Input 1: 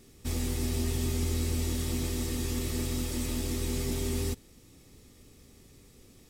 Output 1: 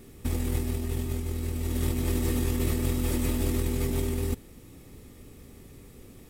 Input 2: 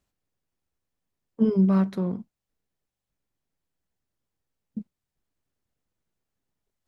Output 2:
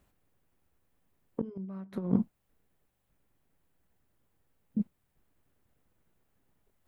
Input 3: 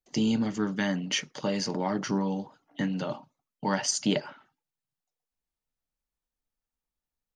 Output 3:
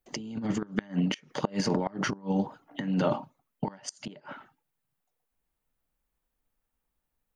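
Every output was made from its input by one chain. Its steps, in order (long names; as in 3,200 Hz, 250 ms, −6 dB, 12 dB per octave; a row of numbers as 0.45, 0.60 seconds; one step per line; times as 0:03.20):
gate with flip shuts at −17 dBFS, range −31 dB
compressor whose output falls as the input rises −32 dBFS, ratio −0.5
parametric band 5,400 Hz −9.5 dB 1.5 octaves
level +5.5 dB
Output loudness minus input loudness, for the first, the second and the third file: +2.5, −12.0, −2.0 LU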